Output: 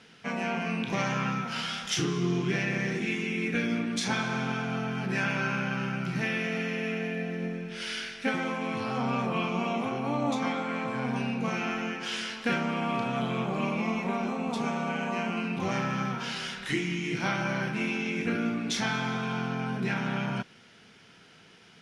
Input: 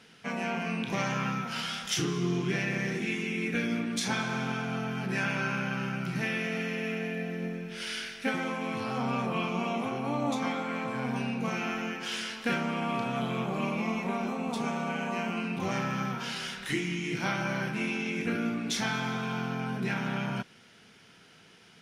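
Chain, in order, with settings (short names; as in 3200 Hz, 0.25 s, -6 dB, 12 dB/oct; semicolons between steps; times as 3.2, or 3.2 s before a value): Bessel low-pass 7900 Hz, order 2; gain +1.5 dB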